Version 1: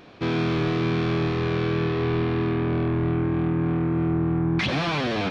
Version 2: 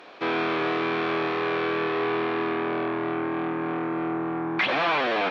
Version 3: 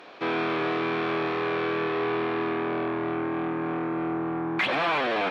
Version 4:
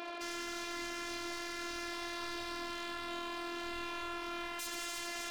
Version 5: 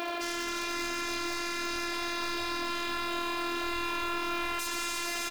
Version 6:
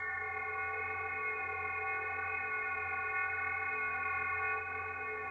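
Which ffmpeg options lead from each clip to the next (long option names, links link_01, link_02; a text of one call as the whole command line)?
ffmpeg -i in.wav -filter_complex "[0:a]highpass=530,aemphasis=mode=reproduction:type=cd,acrossover=split=3600[link_01][link_02];[link_02]acompressor=threshold=-53dB:ratio=4:attack=1:release=60[link_03];[link_01][link_03]amix=inputs=2:normalize=0,volume=5.5dB" out.wav
ffmpeg -i in.wav -filter_complex "[0:a]lowshelf=frequency=140:gain=4,asplit=2[link_01][link_02];[link_02]asoftclip=type=tanh:threshold=-28.5dB,volume=-11dB[link_03];[link_01][link_03]amix=inputs=2:normalize=0,volume=-2.5dB" out.wav
ffmpeg -i in.wav -af "alimiter=level_in=2dB:limit=-24dB:level=0:latency=1:release=356,volume=-2dB,aeval=exprs='0.01*(abs(mod(val(0)/0.01+3,4)-2)-1)':channel_layout=same,afftfilt=real='hypot(re,im)*cos(PI*b)':imag='0':win_size=512:overlap=0.75,volume=7dB" out.wav
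ffmpeg -i in.wav -filter_complex "[0:a]asplit=2[link_01][link_02];[link_02]alimiter=level_in=5dB:limit=-24dB:level=0:latency=1,volume=-5dB,volume=2dB[link_03];[link_01][link_03]amix=inputs=2:normalize=0,acrusher=bits=5:mode=log:mix=0:aa=0.000001,aecho=1:1:324|471|612:0.112|0.422|0.133,volume=2dB" out.wav
ffmpeg -i in.wav -af "lowpass=frequency=2100:width_type=q:width=0.5098,lowpass=frequency=2100:width_type=q:width=0.6013,lowpass=frequency=2100:width_type=q:width=0.9,lowpass=frequency=2100:width_type=q:width=2.563,afreqshift=-2500,flanger=delay=18.5:depth=7.5:speed=0.78" -ar 16000 -c:a g722 out.g722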